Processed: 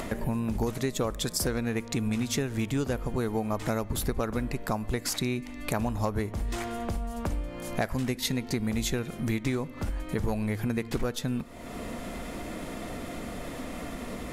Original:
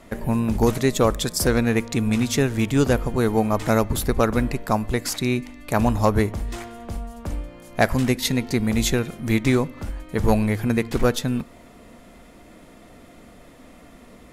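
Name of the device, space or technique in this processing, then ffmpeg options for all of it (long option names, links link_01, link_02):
upward and downward compression: -af "acompressor=mode=upward:threshold=-21dB:ratio=2.5,acompressor=threshold=-22dB:ratio=6,volume=-3dB"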